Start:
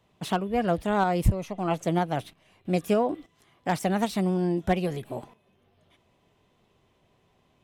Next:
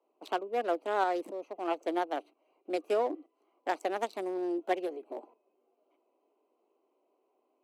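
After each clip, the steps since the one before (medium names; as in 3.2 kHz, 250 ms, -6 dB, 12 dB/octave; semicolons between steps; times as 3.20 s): local Wiener filter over 25 samples; steep high-pass 290 Hz 48 dB/octave; trim -3.5 dB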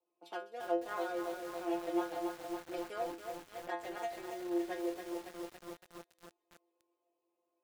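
inharmonic resonator 170 Hz, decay 0.32 s, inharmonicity 0.002; feedback echo behind a high-pass 130 ms, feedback 77%, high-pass 4.5 kHz, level -11 dB; bit-crushed delay 279 ms, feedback 80%, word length 9-bit, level -5 dB; trim +4 dB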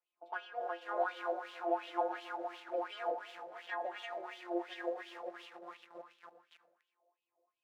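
on a send at -7 dB: reverberation RT60 0.80 s, pre-delay 65 ms; on the sum: wah-wah 2.8 Hz 570–3200 Hz, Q 4.7; trim +10.5 dB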